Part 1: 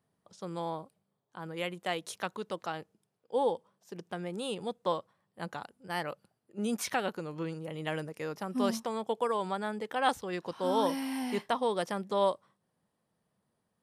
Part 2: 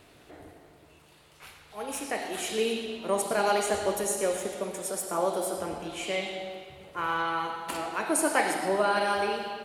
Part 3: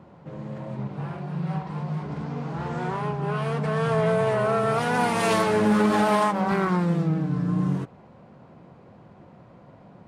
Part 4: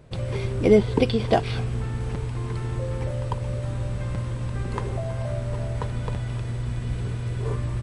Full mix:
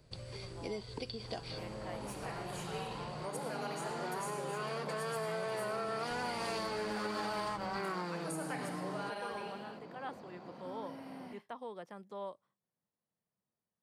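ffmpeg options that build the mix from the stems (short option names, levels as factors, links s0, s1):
-filter_complex "[0:a]acrossover=split=2800[s0][s1];[s1]acompressor=threshold=0.002:ratio=4:attack=1:release=60[s2];[s0][s2]amix=inputs=2:normalize=0,volume=0.188[s3];[1:a]adelay=150,volume=0.188[s4];[2:a]highpass=230,adelay=1250,volume=1.12[s5];[3:a]highshelf=f=3600:g=8.5,volume=0.224,asplit=3[s6][s7][s8];[s6]atrim=end=3.26,asetpts=PTS-STARTPTS,afade=t=out:st=3.256:d=0.004:c=hsin[s9];[s7]atrim=start=3.26:end=6.1,asetpts=PTS-STARTPTS,volume=0[s10];[s8]atrim=start=6.1,asetpts=PTS-STARTPTS,afade=t=in:d=0.004:c=hsin[s11];[s9][s10][s11]concat=n=3:v=0:a=1[s12];[s5][s12]amix=inputs=2:normalize=0,equalizer=f=4600:t=o:w=0.21:g=14.5,acompressor=threshold=0.00447:ratio=1.5,volume=1[s13];[s3][s4][s13]amix=inputs=3:normalize=0,acrossover=split=320|1300[s14][s15][s16];[s14]acompressor=threshold=0.00501:ratio=4[s17];[s15]acompressor=threshold=0.0112:ratio=4[s18];[s16]acompressor=threshold=0.00794:ratio=4[s19];[s17][s18][s19]amix=inputs=3:normalize=0"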